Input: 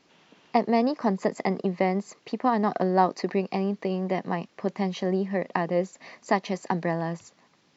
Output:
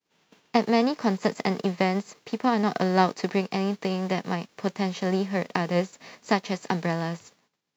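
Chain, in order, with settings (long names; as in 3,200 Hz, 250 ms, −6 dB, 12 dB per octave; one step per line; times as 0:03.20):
spectral envelope flattened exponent 0.6
parametric band 450 Hz +6 dB 0.26 octaves
downward expander −51 dBFS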